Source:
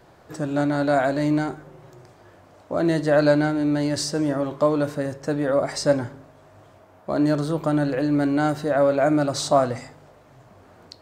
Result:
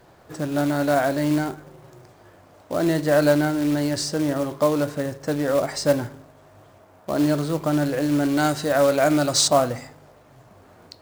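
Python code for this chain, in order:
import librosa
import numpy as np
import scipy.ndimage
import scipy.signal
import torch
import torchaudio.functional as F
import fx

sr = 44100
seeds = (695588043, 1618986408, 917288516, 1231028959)

y = fx.peak_eq(x, sr, hz=7100.0, db=10.5, octaves=2.9, at=(8.37, 9.48))
y = fx.quant_float(y, sr, bits=2)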